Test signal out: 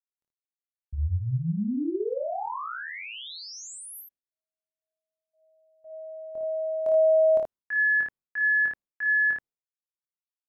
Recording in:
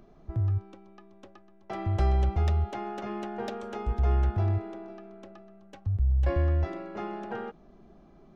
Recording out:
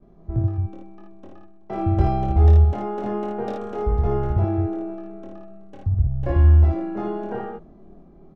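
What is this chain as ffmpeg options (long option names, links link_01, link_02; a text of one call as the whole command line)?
ffmpeg -i in.wav -af "agate=range=-33dB:threshold=-50dB:ratio=3:detection=peak,tiltshelf=frequency=1200:gain=7.5,aecho=1:1:24|55|79:0.668|0.631|0.631" out.wav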